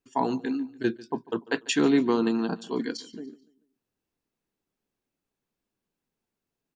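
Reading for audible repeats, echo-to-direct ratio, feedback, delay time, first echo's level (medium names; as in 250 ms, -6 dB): 2, -20.0 dB, 43%, 145 ms, -21.0 dB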